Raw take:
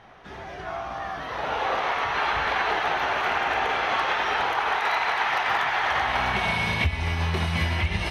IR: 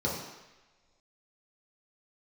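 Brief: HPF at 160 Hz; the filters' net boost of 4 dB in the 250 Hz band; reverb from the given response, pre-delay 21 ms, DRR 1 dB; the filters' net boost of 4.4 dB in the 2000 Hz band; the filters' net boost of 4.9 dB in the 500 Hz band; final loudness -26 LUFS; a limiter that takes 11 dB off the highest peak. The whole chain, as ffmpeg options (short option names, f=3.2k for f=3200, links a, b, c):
-filter_complex "[0:a]highpass=160,equalizer=f=250:t=o:g=6,equalizer=f=500:t=o:g=5,equalizer=f=2k:t=o:g=5,alimiter=limit=-19dB:level=0:latency=1,asplit=2[a][b];[1:a]atrim=start_sample=2205,adelay=21[c];[b][c]afir=irnorm=-1:irlink=0,volume=-9.5dB[d];[a][d]amix=inputs=2:normalize=0,volume=-1.5dB"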